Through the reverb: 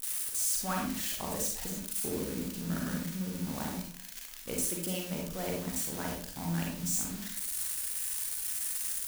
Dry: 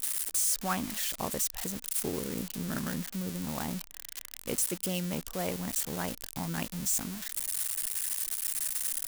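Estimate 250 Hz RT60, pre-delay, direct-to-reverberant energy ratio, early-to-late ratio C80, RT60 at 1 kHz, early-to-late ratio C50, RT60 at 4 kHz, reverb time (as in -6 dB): 0.60 s, 35 ms, -0.5 dB, 7.5 dB, 0.45 s, 2.0 dB, 0.45 s, 0.45 s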